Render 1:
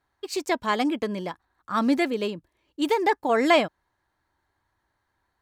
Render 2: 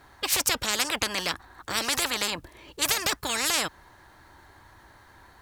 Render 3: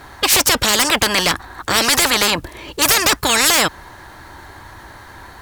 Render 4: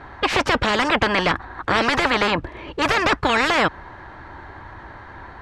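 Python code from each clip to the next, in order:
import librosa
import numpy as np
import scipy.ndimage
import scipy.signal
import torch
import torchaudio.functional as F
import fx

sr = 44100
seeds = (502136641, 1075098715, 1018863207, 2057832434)

y1 = fx.spectral_comp(x, sr, ratio=10.0)
y2 = fx.fold_sine(y1, sr, drive_db=11, ceiling_db=-7.5)
y3 = scipy.signal.sosfilt(scipy.signal.butter(2, 2200.0, 'lowpass', fs=sr, output='sos'), y2)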